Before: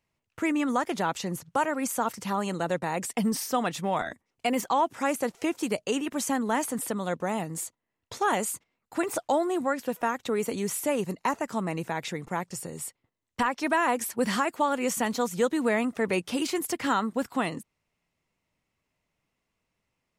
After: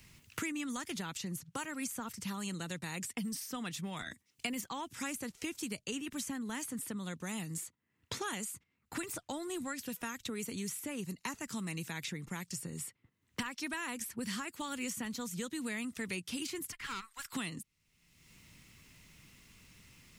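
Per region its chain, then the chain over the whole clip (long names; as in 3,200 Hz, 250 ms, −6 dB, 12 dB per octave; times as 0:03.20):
0:16.72–0:17.33: inverse Chebyshev high-pass filter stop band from 370 Hz, stop band 50 dB + de-essing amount 80% + tube saturation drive 26 dB, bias 0.7
whole clip: guitar amp tone stack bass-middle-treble 6-0-2; multiband upward and downward compressor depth 100%; level +9 dB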